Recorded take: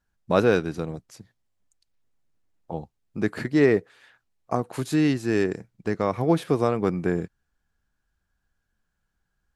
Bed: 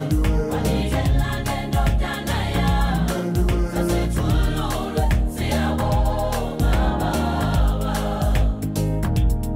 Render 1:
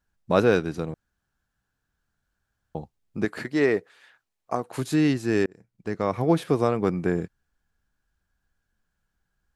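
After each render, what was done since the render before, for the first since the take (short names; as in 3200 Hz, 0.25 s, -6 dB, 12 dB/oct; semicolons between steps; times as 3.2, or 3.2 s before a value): 0.94–2.75 room tone; 3.25–4.72 low shelf 240 Hz -10.5 dB; 5.46–6.13 fade in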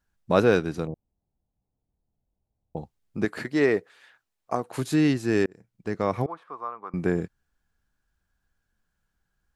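0.87–2.77 inverse Chebyshev low-pass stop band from 1600 Hz; 6.26–6.94 band-pass 1100 Hz, Q 5.4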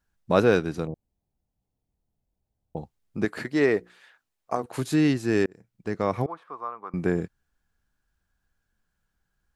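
3.77–4.66 notches 60/120/180/240/300/360 Hz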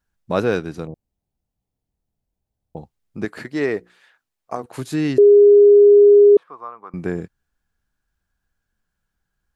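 5.18–6.37 bleep 409 Hz -6 dBFS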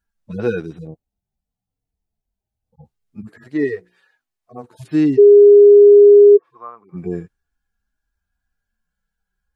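median-filter separation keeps harmonic; dynamic EQ 310 Hz, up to +7 dB, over -29 dBFS, Q 2.3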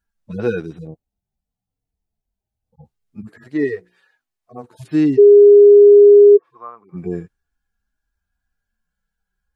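nothing audible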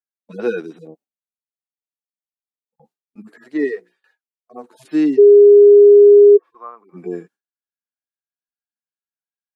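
HPF 230 Hz 24 dB/oct; gate with hold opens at -49 dBFS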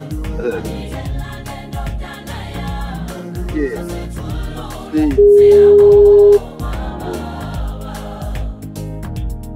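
add bed -4 dB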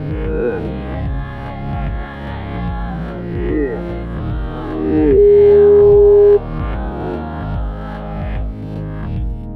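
spectral swells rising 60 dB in 1.36 s; air absorption 460 m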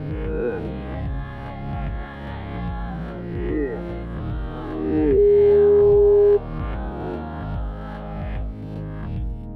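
gain -6.5 dB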